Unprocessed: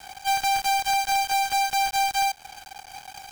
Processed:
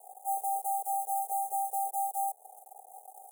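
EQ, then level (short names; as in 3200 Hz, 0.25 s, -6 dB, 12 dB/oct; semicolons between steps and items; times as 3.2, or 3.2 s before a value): brick-wall FIR high-pass 390 Hz; elliptic band-stop 680–9100 Hz, stop band 40 dB; -2.0 dB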